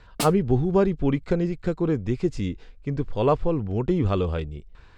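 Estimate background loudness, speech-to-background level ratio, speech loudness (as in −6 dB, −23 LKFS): −32.0 LKFS, 7.5 dB, −24.5 LKFS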